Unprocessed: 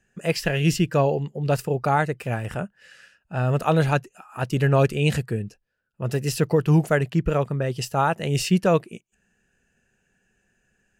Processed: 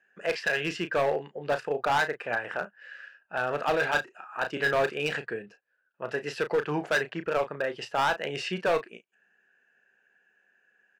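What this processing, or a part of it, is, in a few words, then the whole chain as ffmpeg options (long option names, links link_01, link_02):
megaphone: -filter_complex "[0:a]highpass=490,lowpass=2800,equalizer=frequency=1600:width_type=o:width=0.27:gain=8,asoftclip=type=hard:threshold=-20.5dB,asplit=2[link_01][link_02];[link_02]adelay=34,volume=-10dB[link_03];[link_01][link_03]amix=inputs=2:normalize=0,asettb=1/sr,asplit=3[link_04][link_05][link_06];[link_04]atrim=end=3.704[link_07];[link_05]atrim=start=3.7:end=4.73,asetpts=PTS-STARTPTS,afade=type=in:duration=0.004:curve=qsin,afade=type=out:start_time=1.026:duration=0.004:curve=qsin,asplit=2[link_08][link_09];[link_09]adelay=34,volume=-14dB[link_10];[link_08][link_10]amix=inputs=2:normalize=0,atrim=end_sample=45423[link_11];[link_06]atrim=start=4.726[link_12];[link_07][link_11]acrossfade=duration=0.004:curve1=hsin:curve2=qsin[link_13];[link_13][link_12]acrossfade=duration=0.004:curve1=qsin:curve2=hsin"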